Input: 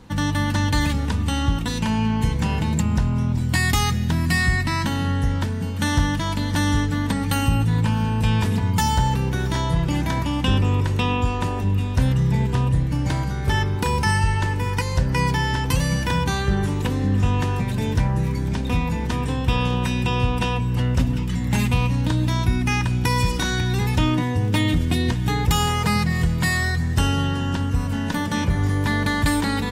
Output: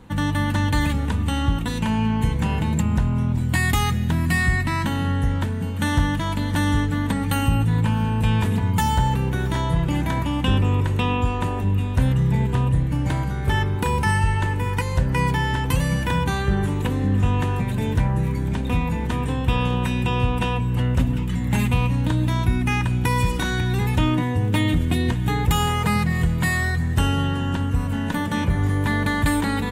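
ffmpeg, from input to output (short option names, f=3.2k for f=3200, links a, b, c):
-af "equalizer=f=5.2k:w=2:g=-10"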